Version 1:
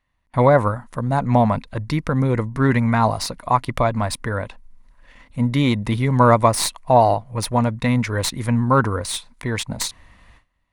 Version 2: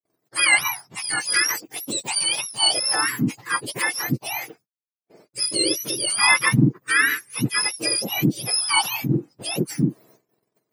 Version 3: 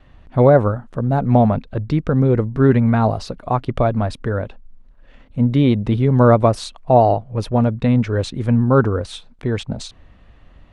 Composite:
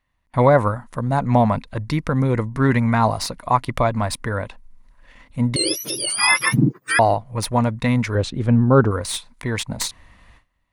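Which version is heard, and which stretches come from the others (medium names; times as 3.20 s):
1
5.56–6.99 s: from 2
8.15–8.91 s: from 3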